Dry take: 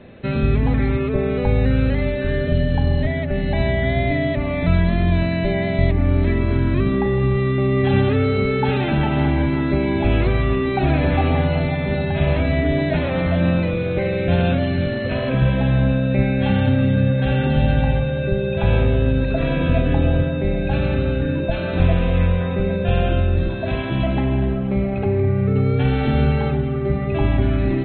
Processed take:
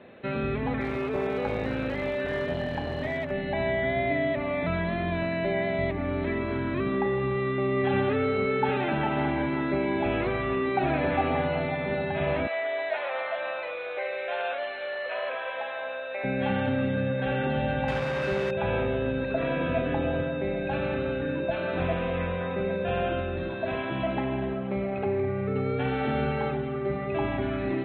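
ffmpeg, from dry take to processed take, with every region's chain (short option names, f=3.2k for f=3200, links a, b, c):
-filter_complex "[0:a]asettb=1/sr,asplit=3[a][b][c];[a]atrim=end=0.804[d];[b]atrim=start=0.8:end=3.31,asetpts=PTS-STARTPTS,afade=t=in:d=0.004:c=qsin,afade=t=out:st=2.506:d=0.004:c=qsin,aeval=exprs='clip(val(0),-1,0.119)':c=same,aemphasis=mode=production:type=cd[e];[c]atrim=start=3.306[f];[d][e]acrossfade=d=0.004:c1=hsin:c2=qsin[g];[g][f]acrossfade=d=0.004:c1=qsin:c2=hsin,asettb=1/sr,asplit=3[h][i][j];[h]atrim=end=12.474[k];[i]atrim=start=12.47:end=16.24,asetpts=PTS-STARTPTS,afade=t=in:d=0.004:c=qsin,afade=t=out:st=3.766:d=0.004:c=qsin,highpass=f=580:w=0.5412,highpass=f=580:w=1.3066,aeval=exprs='val(0)+0.00251*(sin(2*PI*50*n/s)+sin(2*PI*2*50*n/s)/2+sin(2*PI*3*50*n/s)/3+sin(2*PI*4*50*n/s)/4+sin(2*PI*5*50*n/s)/5)':c=same[l];[j]atrim=start=16.236[m];[k][l]acrossfade=d=0.004:c1=hsin:c2=qsin[n];[n][m]acrossfade=d=0.004:c1=qsin:c2=hsin,asettb=1/sr,asplit=3[o][p][q];[o]atrim=end=17.884[r];[p]atrim=start=17.88:end=18.51,asetpts=PTS-STARTPTS,afade=t=in:d=0.004:c=qsin,afade=t=out:st=0.626:d=0.004:c=qsin,highshelf=f=2.5k:g=8.5,aeval=exprs='val(0)+0.0316*(sin(2*PI*60*n/s)+sin(2*PI*2*60*n/s)/2+sin(2*PI*3*60*n/s)/3+sin(2*PI*4*60*n/s)/4+sin(2*PI*5*60*n/s)/5)':c=same,acrusher=bits=3:mix=0:aa=0.5[s];[q]atrim=start=18.506[t];[r][s]acrossfade=d=0.004:c1=hsin:c2=qsin[u];[u][t]acrossfade=d=0.004:c1=qsin:c2=hsin,highpass=f=620:p=1,acrossover=split=3200[v][w];[w]acompressor=threshold=-46dB:ratio=4:attack=1:release=60[x];[v][x]amix=inputs=2:normalize=0,highshelf=f=2.8k:g=-9.5"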